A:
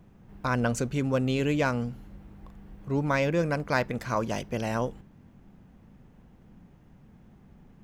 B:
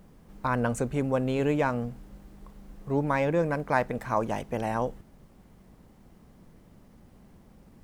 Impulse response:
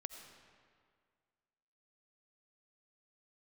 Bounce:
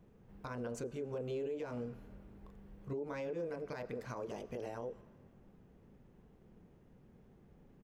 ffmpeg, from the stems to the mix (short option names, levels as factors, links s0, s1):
-filter_complex "[0:a]volume=0.316,asplit=2[s0][s1];[s1]volume=0.224[s2];[1:a]alimiter=limit=0.112:level=0:latency=1:release=182,bandpass=f=420:t=q:w=3.6:csg=0,adelay=26,volume=0.75,asplit=2[s3][s4];[s4]apad=whole_len=345348[s5];[s0][s5]sidechaincompress=threshold=0.00398:ratio=8:attack=8.5:release=176[s6];[2:a]atrim=start_sample=2205[s7];[s2][s7]afir=irnorm=-1:irlink=0[s8];[s6][s3][s8]amix=inputs=3:normalize=0,alimiter=level_in=2.66:limit=0.0631:level=0:latency=1:release=89,volume=0.376"